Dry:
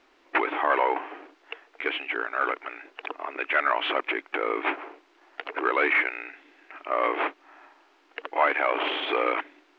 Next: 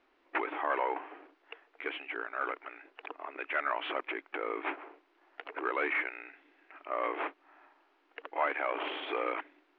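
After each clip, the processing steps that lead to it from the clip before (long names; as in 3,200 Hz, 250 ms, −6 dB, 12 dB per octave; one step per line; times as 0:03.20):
Bessel low-pass filter 3,200 Hz, order 2
level −8 dB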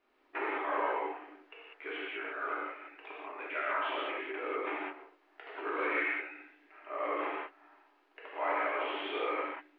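reverb whose tail is shaped and stops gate 220 ms flat, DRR −7.5 dB
level −8.5 dB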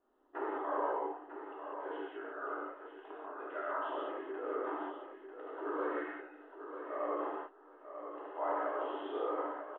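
moving average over 19 samples
repeating echo 945 ms, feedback 17%, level −9 dB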